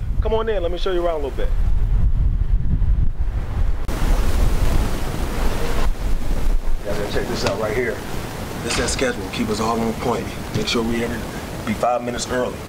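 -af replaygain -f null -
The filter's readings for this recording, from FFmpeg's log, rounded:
track_gain = +4.1 dB
track_peak = 0.381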